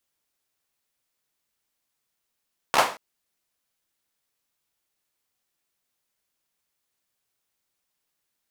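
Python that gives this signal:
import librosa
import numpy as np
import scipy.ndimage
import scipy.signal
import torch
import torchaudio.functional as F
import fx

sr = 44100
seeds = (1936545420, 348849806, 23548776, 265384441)

y = fx.drum_clap(sr, seeds[0], length_s=0.23, bursts=4, spacing_ms=14, hz=850.0, decay_s=0.36)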